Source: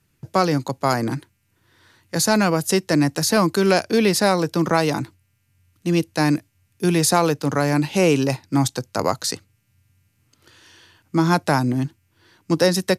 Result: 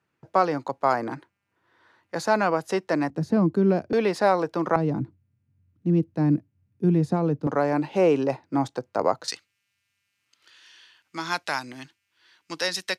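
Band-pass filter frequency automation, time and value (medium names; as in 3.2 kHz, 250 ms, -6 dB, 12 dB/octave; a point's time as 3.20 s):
band-pass filter, Q 0.84
850 Hz
from 3.10 s 200 Hz
from 3.93 s 780 Hz
from 4.76 s 180 Hz
from 7.47 s 620 Hz
from 9.28 s 2.9 kHz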